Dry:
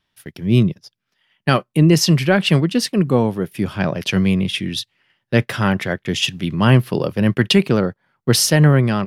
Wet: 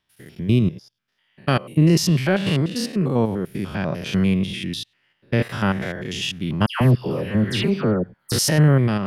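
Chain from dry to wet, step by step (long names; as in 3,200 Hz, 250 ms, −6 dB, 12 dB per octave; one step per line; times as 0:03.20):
spectrum averaged block by block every 100 ms
0:06.66–0:08.32: all-pass dispersion lows, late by 146 ms, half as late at 1,800 Hz
level −2 dB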